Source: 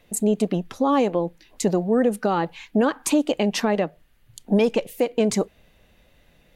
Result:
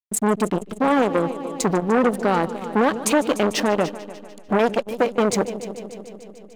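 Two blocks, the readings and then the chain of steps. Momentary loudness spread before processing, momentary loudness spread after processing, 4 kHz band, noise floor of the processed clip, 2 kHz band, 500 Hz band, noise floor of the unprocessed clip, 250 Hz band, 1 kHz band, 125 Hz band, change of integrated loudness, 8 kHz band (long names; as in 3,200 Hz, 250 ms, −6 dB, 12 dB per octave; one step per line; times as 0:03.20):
6 LU, 16 LU, +1.5 dB, −43 dBFS, +5.5 dB, +1.5 dB, −59 dBFS, 0.0 dB, +4.5 dB, 0.0 dB, +1.5 dB, +2.5 dB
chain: slack as between gear wheels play −33 dBFS
echo machine with several playback heads 148 ms, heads first and second, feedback 66%, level −17 dB
saturating transformer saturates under 910 Hz
level +4.5 dB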